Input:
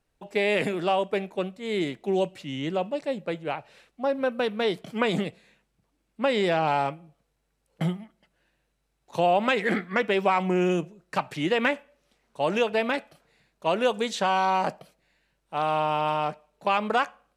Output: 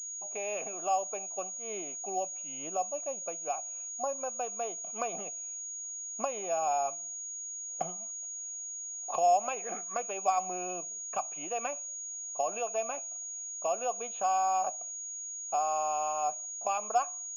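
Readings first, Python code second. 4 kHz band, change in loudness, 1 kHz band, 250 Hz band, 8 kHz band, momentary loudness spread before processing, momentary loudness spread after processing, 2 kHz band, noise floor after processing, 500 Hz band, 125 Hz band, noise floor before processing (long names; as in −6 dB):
−18.5 dB, −6.5 dB, −4.0 dB, −20.5 dB, +18.0 dB, 8 LU, 8 LU, −16.5 dB, −41 dBFS, −9.0 dB, −25.0 dB, −75 dBFS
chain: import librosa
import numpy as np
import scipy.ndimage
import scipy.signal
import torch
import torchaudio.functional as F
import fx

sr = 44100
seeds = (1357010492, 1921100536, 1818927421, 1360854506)

y = fx.recorder_agc(x, sr, target_db=-14.5, rise_db_per_s=15.0, max_gain_db=30)
y = fx.vowel_filter(y, sr, vowel='a')
y = fx.pwm(y, sr, carrier_hz=6700.0)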